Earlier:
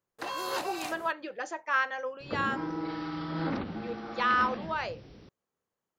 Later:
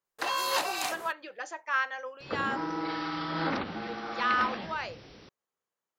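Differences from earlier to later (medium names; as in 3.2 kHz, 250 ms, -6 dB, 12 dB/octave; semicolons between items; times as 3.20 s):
background +7.5 dB; master: add bass shelf 450 Hz -12 dB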